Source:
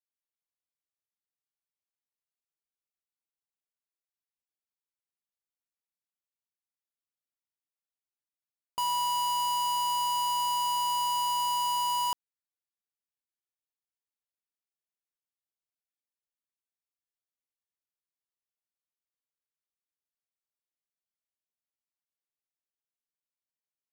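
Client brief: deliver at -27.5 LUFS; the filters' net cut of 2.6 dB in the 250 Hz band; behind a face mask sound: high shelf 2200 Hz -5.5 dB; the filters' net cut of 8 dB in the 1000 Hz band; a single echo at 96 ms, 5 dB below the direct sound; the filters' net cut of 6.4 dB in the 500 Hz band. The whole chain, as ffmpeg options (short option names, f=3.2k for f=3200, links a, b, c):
-af "equalizer=f=250:t=o:g=-4.5,equalizer=f=500:t=o:g=-5,equalizer=f=1k:t=o:g=-6,highshelf=f=2.2k:g=-5.5,aecho=1:1:96:0.562,volume=6dB"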